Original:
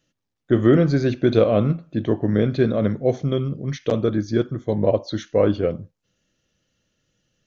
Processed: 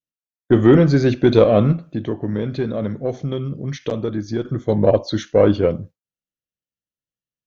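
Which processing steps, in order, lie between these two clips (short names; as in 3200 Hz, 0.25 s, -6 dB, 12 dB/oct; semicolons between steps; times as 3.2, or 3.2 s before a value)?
one diode to ground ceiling -4.5 dBFS; expander -38 dBFS; 1.81–4.45 compressor 2:1, threshold -30 dBFS, peak gain reduction 9 dB; gain +5 dB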